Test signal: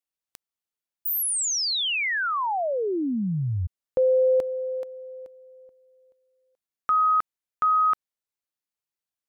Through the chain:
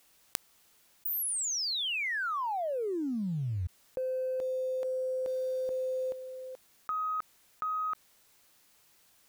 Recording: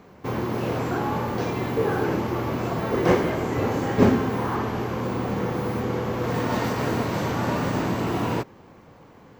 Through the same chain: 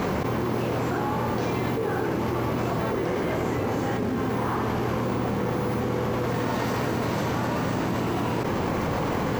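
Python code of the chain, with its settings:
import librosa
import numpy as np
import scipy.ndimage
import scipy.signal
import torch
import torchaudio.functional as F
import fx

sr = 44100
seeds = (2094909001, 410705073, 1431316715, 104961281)

p1 = fx.quant_float(x, sr, bits=2)
p2 = x + (p1 * librosa.db_to_amplitude(-6.5))
p3 = fx.env_flatten(p2, sr, amount_pct=100)
y = p3 * librosa.db_to_amplitude(-16.5)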